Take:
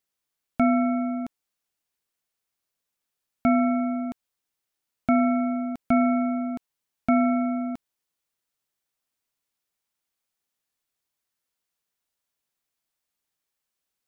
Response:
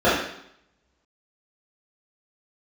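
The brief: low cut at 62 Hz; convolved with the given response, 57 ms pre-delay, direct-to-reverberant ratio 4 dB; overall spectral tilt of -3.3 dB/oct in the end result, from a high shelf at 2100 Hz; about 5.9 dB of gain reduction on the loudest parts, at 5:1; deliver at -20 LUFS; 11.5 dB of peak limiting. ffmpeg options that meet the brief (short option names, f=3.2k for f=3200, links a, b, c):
-filter_complex "[0:a]highpass=62,highshelf=f=2.1k:g=-6,acompressor=threshold=-23dB:ratio=5,alimiter=limit=-24dB:level=0:latency=1,asplit=2[a][b];[1:a]atrim=start_sample=2205,adelay=57[c];[b][c]afir=irnorm=-1:irlink=0,volume=-27dB[d];[a][d]amix=inputs=2:normalize=0,volume=13.5dB"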